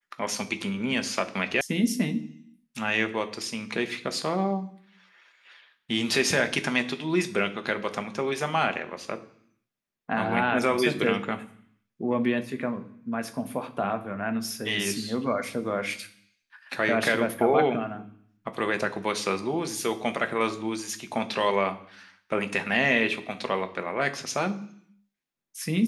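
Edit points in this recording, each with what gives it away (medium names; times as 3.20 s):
1.61 s: sound stops dead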